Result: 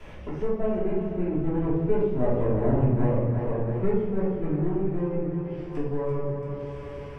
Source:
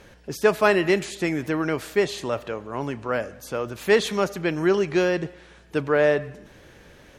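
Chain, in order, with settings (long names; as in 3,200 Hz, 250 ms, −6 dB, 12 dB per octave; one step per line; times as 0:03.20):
lower of the sound and its delayed copy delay 0.36 ms
source passing by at 0:02.57, 14 m/s, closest 3.9 metres
automatic gain control gain up to 5 dB
treble cut that deepens with the level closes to 560 Hz, closed at −44 dBFS
parametric band 320 Hz −6 dB 1.5 octaves
feedback echo with a high-pass in the loop 338 ms, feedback 54%, high-pass 400 Hz, level −8 dB
rectangular room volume 320 cubic metres, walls mixed, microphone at 3 metres
multiband upward and downward compressor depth 70%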